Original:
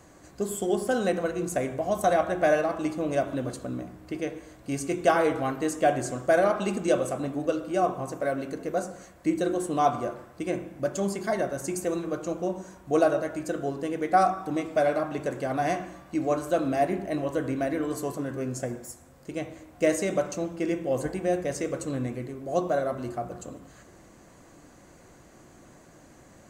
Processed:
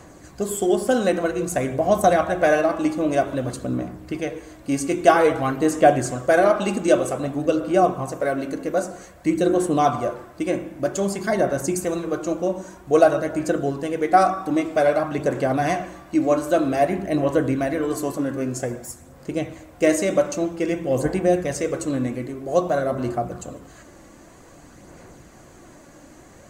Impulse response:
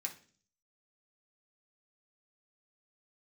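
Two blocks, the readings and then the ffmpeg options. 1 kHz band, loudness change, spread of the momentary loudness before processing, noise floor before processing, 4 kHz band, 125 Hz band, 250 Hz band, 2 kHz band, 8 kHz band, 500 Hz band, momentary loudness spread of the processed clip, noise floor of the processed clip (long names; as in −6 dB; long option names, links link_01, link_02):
+5.5 dB, +6.0 dB, 12 LU, −53 dBFS, +6.0 dB, +6.0 dB, +6.5 dB, +6.0 dB, +6.0 dB, +6.0 dB, 11 LU, −47 dBFS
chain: -af "aphaser=in_gain=1:out_gain=1:delay=3.6:decay=0.32:speed=0.52:type=sinusoidal,volume=5.5dB"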